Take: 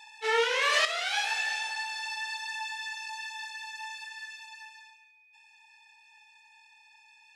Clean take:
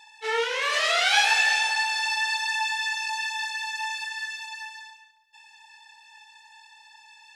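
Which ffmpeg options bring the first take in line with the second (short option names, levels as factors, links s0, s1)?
-af "bandreject=f=2500:w=30,asetnsamples=n=441:p=0,asendcmd='0.85 volume volume 9.5dB',volume=1"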